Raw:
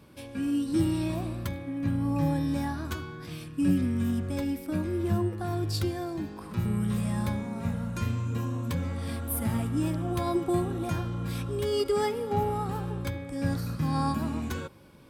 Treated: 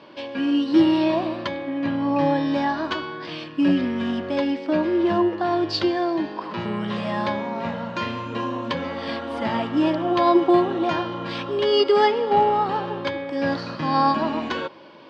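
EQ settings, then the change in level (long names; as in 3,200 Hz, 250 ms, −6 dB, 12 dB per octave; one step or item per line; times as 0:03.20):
high-frequency loss of the air 73 metres
loudspeaker in its box 280–5,500 Hz, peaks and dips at 330 Hz +5 dB, 620 Hz +9 dB, 970 Hz +9 dB, 1,800 Hz +6 dB, 3,000 Hz +9 dB, 4,500 Hz +6 dB
+7.5 dB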